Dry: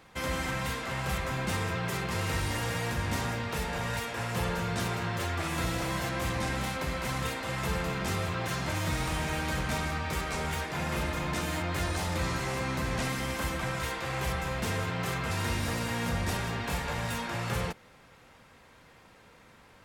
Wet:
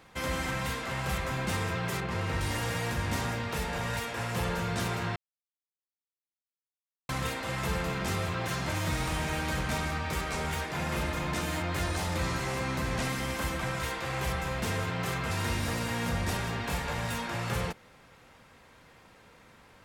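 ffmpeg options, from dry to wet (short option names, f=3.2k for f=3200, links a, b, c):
-filter_complex "[0:a]asettb=1/sr,asplit=3[a][b][c];[a]atrim=end=2.004[d];[b]atrim=start=2:end=2.41,asetpts=PTS-STARTPTS,afade=t=in:d=0.004:c=qsin,afade=t=out:st=0.406:d=0.004:c=qsin,lowpass=f=2.6k:p=1[e];[c]atrim=start=2.406[f];[d][e]acrossfade=d=0.004:c1=hsin:c2=qsin[g];[g][f]acrossfade=d=0.004:c1=qsin:c2=hsin,asettb=1/sr,asplit=3[h][i][j];[h]atrim=end=3.784[k];[i]atrim=start=3.78:end=4.51,asetpts=PTS-STARTPTS,afade=t=in:d=0.004:c=qsin,afade=t=out:st=0.726:d=0.004:c=qsin,asoftclip=type=hard:threshold=-24dB[l];[j]atrim=start=4.506[m];[k][l]acrossfade=d=0.004:c1=hsin:c2=qsin[n];[n][m]acrossfade=d=0.004:c1=qsin:c2=hsin,asplit=3[o][p][q];[o]atrim=end=5.16,asetpts=PTS-STARTPTS,afade=t=out:st=5.156:d=0.004:c=hsin[r];[p]atrim=start=5.16:end=7.09,asetpts=PTS-STARTPTS,volume=0[s];[q]atrim=start=7.09,asetpts=PTS-STARTPTS,afade=t=in:d=0.004:c=hsin[t];[r][s][t]concat=n=3:v=0:a=1"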